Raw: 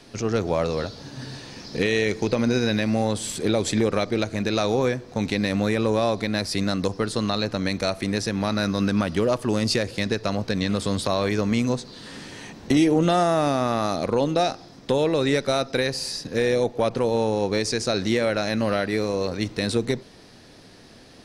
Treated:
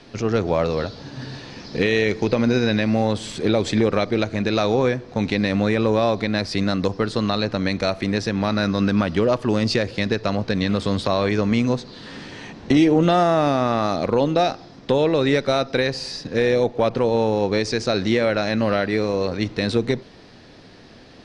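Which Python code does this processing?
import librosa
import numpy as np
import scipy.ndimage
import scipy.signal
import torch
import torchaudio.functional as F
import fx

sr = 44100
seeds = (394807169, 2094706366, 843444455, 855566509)

y = scipy.signal.sosfilt(scipy.signal.butter(2, 4600.0, 'lowpass', fs=sr, output='sos'), x)
y = y * 10.0 ** (3.0 / 20.0)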